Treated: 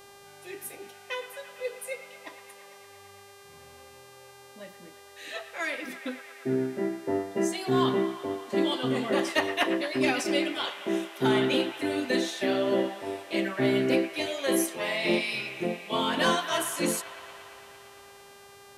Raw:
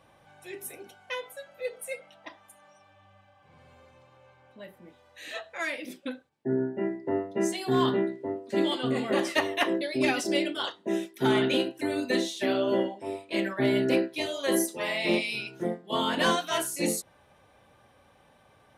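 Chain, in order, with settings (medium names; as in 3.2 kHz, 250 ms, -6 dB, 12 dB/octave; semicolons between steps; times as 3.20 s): feedback echo behind a band-pass 114 ms, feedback 81%, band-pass 1.6 kHz, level -11 dB; mains buzz 400 Hz, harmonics 34, -52 dBFS -4 dB/octave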